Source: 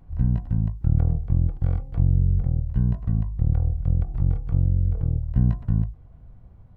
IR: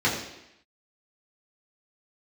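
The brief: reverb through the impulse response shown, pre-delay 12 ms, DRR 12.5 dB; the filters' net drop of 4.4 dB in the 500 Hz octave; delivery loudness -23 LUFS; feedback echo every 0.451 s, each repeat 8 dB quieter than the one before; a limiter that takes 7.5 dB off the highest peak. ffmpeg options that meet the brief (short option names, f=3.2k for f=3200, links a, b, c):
-filter_complex "[0:a]equalizer=f=500:t=o:g=-5.5,alimiter=limit=-15dB:level=0:latency=1,aecho=1:1:451|902|1353|1804|2255:0.398|0.159|0.0637|0.0255|0.0102,asplit=2[a][b];[1:a]atrim=start_sample=2205,adelay=12[c];[b][c]afir=irnorm=-1:irlink=0,volume=-27.5dB[d];[a][d]amix=inputs=2:normalize=0,volume=3.5dB"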